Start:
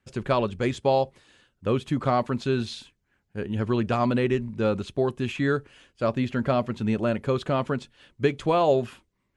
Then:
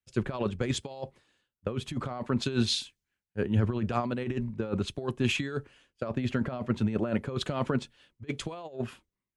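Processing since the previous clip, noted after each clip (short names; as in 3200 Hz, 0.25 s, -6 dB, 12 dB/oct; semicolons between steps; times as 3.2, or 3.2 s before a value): negative-ratio compressor -26 dBFS, ratio -0.5; three-band expander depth 100%; gain -2.5 dB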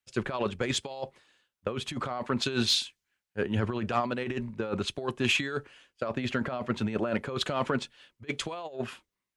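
overdrive pedal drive 10 dB, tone 7900 Hz, clips at -13 dBFS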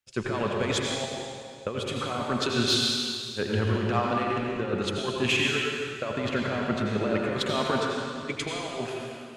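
reverb RT60 2.2 s, pre-delay 72 ms, DRR -1.5 dB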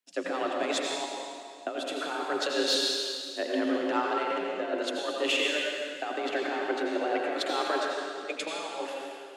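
frequency shift +160 Hz; gain -2.5 dB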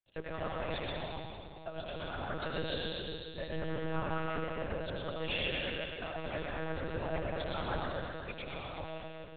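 split-band echo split 530 Hz, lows 0.26 s, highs 0.12 s, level -3.5 dB; monotone LPC vocoder at 8 kHz 160 Hz; gain -8.5 dB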